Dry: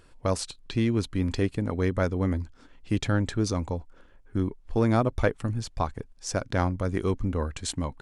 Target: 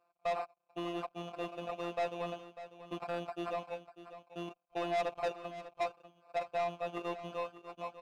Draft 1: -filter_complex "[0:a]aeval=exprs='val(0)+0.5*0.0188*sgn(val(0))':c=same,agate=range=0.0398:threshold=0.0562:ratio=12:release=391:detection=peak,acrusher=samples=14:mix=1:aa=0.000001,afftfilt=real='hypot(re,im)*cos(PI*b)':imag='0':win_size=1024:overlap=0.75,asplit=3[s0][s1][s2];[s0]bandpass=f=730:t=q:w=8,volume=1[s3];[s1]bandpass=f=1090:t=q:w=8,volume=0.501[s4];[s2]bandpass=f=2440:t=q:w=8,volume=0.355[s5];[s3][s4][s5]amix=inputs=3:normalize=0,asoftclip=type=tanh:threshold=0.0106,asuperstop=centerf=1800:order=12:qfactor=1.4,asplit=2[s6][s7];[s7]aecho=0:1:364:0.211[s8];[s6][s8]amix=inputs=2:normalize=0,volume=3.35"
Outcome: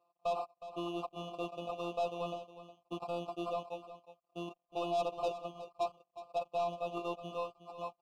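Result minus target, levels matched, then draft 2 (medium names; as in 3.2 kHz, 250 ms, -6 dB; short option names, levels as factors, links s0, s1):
echo 232 ms early; 2 kHz band -6.5 dB
-filter_complex "[0:a]aeval=exprs='val(0)+0.5*0.0188*sgn(val(0))':c=same,agate=range=0.0398:threshold=0.0562:ratio=12:release=391:detection=peak,acrusher=samples=14:mix=1:aa=0.000001,afftfilt=real='hypot(re,im)*cos(PI*b)':imag='0':win_size=1024:overlap=0.75,asplit=3[s0][s1][s2];[s0]bandpass=f=730:t=q:w=8,volume=1[s3];[s1]bandpass=f=1090:t=q:w=8,volume=0.501[s4];[s2]bandpass=f=2440:t=q:w=8,volume=0.355[s5];[s3][s4][s5]amix=inputs=3:normalize=0,asoftclip=type=tanh:threshold=0.0106,asplit=2[s6][s7];[s7]aecho=0:1:596:0.211[s8];[s6][s8]amix=inputs=2:normalize=0,volume=3.35"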